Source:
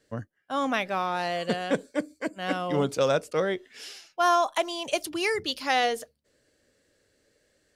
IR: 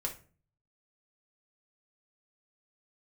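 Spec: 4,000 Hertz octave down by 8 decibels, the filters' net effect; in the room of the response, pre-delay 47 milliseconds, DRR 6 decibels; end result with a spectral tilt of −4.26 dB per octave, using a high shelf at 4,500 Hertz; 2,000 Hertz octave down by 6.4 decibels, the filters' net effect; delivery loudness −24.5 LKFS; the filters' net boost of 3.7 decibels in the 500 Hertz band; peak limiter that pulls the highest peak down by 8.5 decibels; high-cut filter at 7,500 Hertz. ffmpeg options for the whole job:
-filter_complex "[0:a]lowpass=7500,equalizer=frequency=500:width_type=o:gain=5,equalizer=frequency=2000:width_type=o:gain=-6,equalizer=frequency=4000:width_type=o:gain=-5,highshelf=frequency=4500:gain=-6.5,alimiter=limit=-18.5dB:level=0:latency=1,asplit=2[link_01][link_02];[1:a]atrim=start_sample=2205,adelay=47[link_03];[link_02][link_03]afir=irnorm=-1:irlink=0,volume=-7.5dB[link_04];[link_01][link_04]amix=inputs=2:normalize=0,volume=3.5dB"

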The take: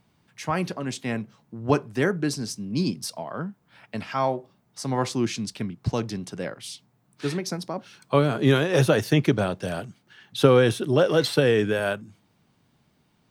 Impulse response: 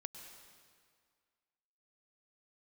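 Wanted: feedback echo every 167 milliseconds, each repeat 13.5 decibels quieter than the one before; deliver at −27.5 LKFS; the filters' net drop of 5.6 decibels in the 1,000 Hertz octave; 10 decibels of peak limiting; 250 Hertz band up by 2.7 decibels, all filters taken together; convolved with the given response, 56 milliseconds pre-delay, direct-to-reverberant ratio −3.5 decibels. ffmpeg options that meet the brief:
-filter_complex "[0:a]equalizer=frequency=250:width_type=o:gain=4,equalizer=frequency=1000:width_type=o:gain=-8,alimiter=limit=-12.5dB:level=0:latency=1,aecho=1:1:167|334:0.211|0.0444,asplit=2[link_01][link_02];[1:a]atrim=start_sample=2205,adelay=56[link_03];[link_02][link_03]afir=irnorm=-1:irlink=0,volume=7dB[link_04];[link_01][link_04]amix=inputs=2:normalize=0,volume=-6.5dB"

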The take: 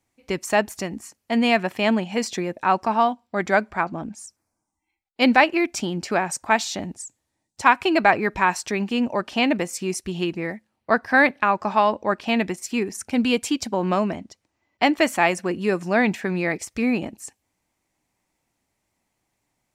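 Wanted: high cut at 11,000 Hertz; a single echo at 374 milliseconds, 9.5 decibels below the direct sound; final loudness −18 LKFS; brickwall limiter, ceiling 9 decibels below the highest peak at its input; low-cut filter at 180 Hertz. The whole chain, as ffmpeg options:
ffmpeg -i in.wav -af "highpass=180,lowpass=11000,alimiter=limit=-10dB:level=0:latency=1,aecho=1:1:374:0.335,volume=6dB" out.wav

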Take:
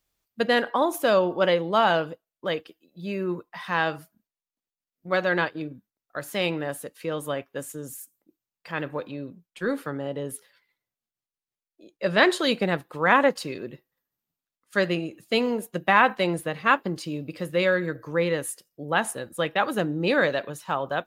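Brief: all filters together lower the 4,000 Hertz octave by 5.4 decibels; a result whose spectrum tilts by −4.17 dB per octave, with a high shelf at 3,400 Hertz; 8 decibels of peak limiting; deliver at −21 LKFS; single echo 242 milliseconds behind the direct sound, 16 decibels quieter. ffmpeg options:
ffmpeg -i in.wav -af "highshelf=frequency=3400:gain=-6.5,equalizer=frequency=4000:width_type=o:gain=-3,alimiter=limit=-13dB:level=0:latency=1,aecho=1:1:242:0.158,volume=6.5dB" out.wav

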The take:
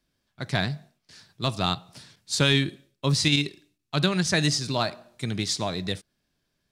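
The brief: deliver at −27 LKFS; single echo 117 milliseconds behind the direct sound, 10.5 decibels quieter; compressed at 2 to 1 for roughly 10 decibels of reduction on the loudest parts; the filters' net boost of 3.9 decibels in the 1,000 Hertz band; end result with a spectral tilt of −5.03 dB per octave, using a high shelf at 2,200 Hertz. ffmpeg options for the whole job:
ffmpeg -i in.wav -af "equalizer=frequency=1000:width_type=o:gain=7,highshelf=frequency=2200:gain=-8,acompressor=threshold=-37dB:ratio=2,aecho=1:1:117:0.299,volume=9dB" out.wav

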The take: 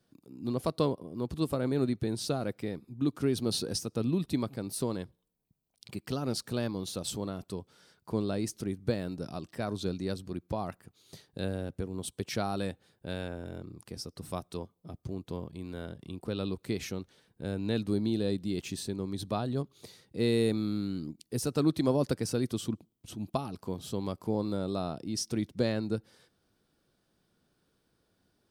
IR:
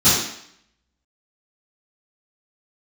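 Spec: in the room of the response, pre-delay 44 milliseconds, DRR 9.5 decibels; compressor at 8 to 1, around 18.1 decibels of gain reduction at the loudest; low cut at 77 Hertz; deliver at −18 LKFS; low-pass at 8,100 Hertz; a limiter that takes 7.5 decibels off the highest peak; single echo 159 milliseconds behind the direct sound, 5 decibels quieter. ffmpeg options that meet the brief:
-filter_complex "[0:a]highpass=77,lowpass=8100,acompressor=threshold=-42dB:ratio=8,alimiter=level_in=12dB:limit=-24dB:level=0:latency=1,volume=-12dB,aecho=1:1:159:0.562,asplit=2[link_01][link_02];[1:a]atrim=start_sample=2205,adelay=44[link_03];[link_02][link_03]afir=irnorm=-1:irlink=0,volume=-30.5dB[link_04];[link_01][link_04]amix=inputs=2:normalize=0,volume=28dB"

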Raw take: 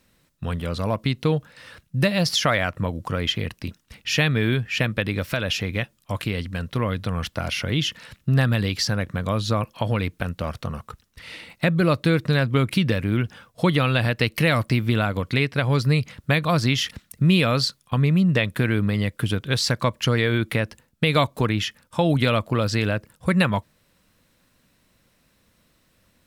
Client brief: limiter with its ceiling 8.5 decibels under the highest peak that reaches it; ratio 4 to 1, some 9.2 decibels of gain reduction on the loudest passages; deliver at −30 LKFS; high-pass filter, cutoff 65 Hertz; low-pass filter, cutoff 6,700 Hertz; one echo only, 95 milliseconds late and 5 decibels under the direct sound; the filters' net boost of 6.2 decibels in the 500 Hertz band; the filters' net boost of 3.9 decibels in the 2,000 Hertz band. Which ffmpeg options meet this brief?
ffmpeg -i in.wav -af "highpass=65,lowpass=6700,equalizer=frequency=500:width_type=o:gain=7,equalizer=frequency=2000:width_type=o:gain=4.5,acompressor=threshold=-23dB:ratio=4,alimiter=limit=-15.5dB:level=0:latency=1,aecho=1:1:95:0.562,volume=-2.5dB" out.wav

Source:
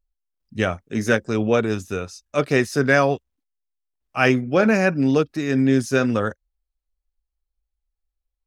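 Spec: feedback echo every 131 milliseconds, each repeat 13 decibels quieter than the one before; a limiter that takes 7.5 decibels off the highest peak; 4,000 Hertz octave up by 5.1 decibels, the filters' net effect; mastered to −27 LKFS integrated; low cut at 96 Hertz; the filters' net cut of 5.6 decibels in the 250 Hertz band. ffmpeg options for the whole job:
ffmpeg -i in.wav -af "highpass=96,equalizer=frequency=250:width_type=o:gain=-6.5,equalizer=frequency=4000:width_type=o:gain=7,alimiter=limit=-10dB:level=0:latency=1,aecho=1:1:131|262|393:0.224|0.0493|0.0108,volume=-3dB" out.wav

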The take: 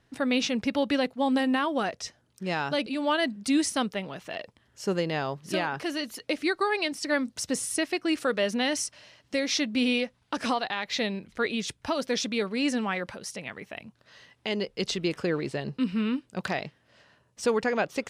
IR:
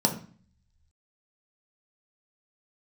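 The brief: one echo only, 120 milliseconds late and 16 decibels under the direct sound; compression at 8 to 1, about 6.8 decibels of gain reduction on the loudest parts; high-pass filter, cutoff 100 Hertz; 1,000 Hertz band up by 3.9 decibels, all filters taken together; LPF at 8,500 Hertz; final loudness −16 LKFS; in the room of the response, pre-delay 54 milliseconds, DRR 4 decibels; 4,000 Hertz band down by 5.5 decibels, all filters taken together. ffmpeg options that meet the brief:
-filter_complex "[0:a]highpass=100,lowpass=8500,equalizer=frequency=1000:width_type=o:gain=5.5,equalizer=frequency=4000:width_type=o:gain=-8,acompressor=threshold=-26dB:ratio=8,aecho=1:1:120:0.158,asplit=2[link_01][link_02];[1:a]atrim=start_sample=2205,adelay=54[link_03];[link_02][link_03]afir=irnorm=-1:irlink=0,volume=-15dB[link_04];[link_01][link_04]amix=inputs=2:normalize=0,volume=12.5dB"

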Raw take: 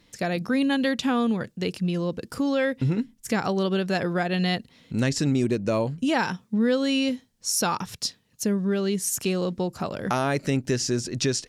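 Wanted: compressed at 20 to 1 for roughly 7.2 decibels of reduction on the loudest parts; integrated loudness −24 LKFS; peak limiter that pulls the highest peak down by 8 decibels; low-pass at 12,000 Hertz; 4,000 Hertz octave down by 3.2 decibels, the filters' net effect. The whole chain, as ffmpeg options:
ffmpeg -i in.wav -af "lowpass=12000,equalizer=frequency=4000:width_type=o:gain=-4.5,acompressor=threshold=-26dB:ratio=20,volume=10dB,alimiter=limit=-15dB:level=0:latency=1" out.wav

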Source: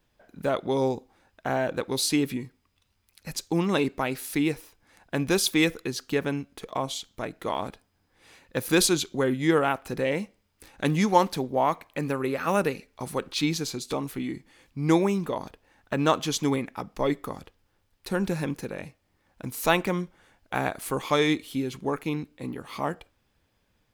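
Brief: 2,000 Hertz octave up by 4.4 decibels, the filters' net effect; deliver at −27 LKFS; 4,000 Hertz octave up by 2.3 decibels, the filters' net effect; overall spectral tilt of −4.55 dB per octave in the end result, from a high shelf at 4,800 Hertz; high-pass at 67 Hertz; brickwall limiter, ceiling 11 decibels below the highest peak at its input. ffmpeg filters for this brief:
ffmpeg -i in.wav -af "highpass=67,equalizer=frequency=2000:width_type=o:gain=5.5,equalizer=frequency=4000:width_type=o:gain=3.5,highshelf=frequency=4800:gain=-5,volume=1.5dB,alimiter=limit=-13dB:level=0:latency=1" out.wav

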